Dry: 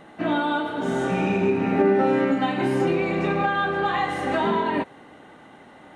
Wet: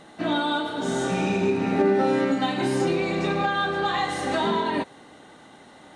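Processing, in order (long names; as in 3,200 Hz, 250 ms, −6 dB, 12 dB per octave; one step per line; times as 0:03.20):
flat-topped bell 5,900 Hz +10 dB
level −1.5 dB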